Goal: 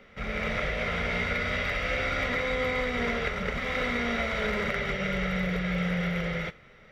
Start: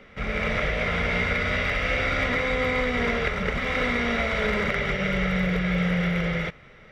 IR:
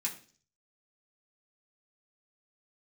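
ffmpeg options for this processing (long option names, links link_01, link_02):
-filter_complex "[0:a]asplit=2[link_01][link_02];[1:a]atrim=start_sample=2205,asetrate=74970,aresample=44100,highshelf=frequency=5400:gain=10[link_03];[link_02][link_03]afir=irnorm=-1:irlink=0,volume=-8.5dB[link_04];[link_01][link_04]amix=inputs=2:normalize=0,volume=-4.5dB"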